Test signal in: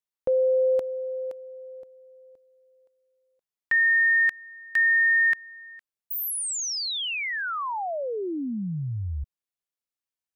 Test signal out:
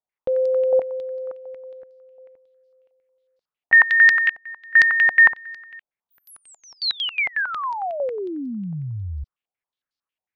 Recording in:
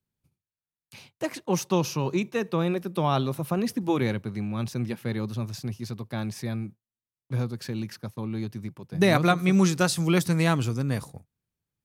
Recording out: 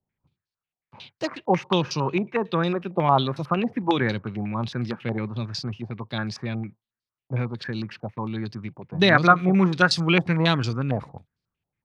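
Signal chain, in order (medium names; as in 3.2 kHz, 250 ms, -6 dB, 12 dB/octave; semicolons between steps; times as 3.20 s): step-sequenced low-pass 11 Hz 750–4700 Hz; trim +1 dB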